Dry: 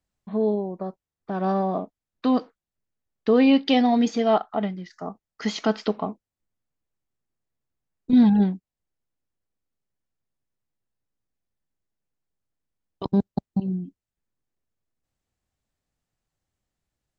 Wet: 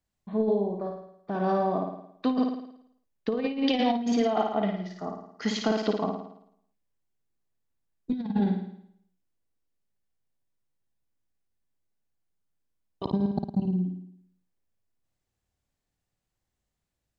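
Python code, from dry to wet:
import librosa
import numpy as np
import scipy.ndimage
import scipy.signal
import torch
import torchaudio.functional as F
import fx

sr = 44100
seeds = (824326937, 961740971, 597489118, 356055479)

y = fx.notch(x, sr, hz=1300.0, q=24.0)
y = fx.room_flutter(y, sr, wall_m=9.4, rt60_s=0.7)
y = fx.over_compress(y, sr, threshold_db=-19.0, ratio=-0.5)
y = y * 10.0 ** (-4.5 / 20.0)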